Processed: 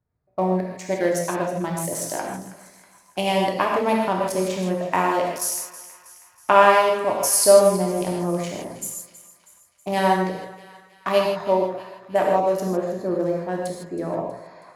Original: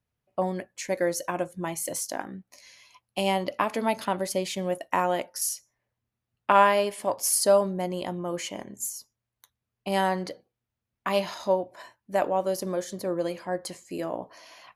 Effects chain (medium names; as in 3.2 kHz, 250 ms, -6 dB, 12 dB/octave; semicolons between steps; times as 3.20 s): local Wiener filter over 15 samples; two-band feedback delay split 1.1 kHz, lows 142 ms, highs 321 ms, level -15.5 dB; gated-style reverb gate 180 ms flat, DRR -1 dB; trim +3 dB